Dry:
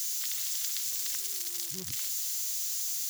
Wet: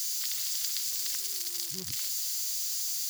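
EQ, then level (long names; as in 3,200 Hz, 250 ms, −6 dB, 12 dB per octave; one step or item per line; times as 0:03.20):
parametric band 4,700 Hz +7 dB 0.23 octaves
notch filter 610 Hz, Q 12
0.0 dB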